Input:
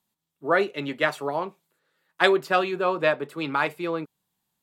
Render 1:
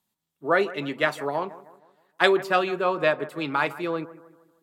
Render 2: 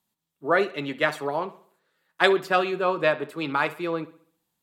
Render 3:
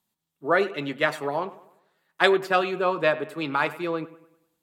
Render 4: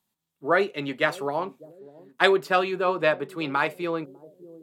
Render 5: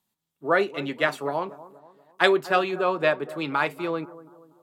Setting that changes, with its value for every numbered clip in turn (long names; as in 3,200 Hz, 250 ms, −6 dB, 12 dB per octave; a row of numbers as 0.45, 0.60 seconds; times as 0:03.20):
bucket-brigade delay, delay time: 156, 66, 99, 600, 240 milliseconds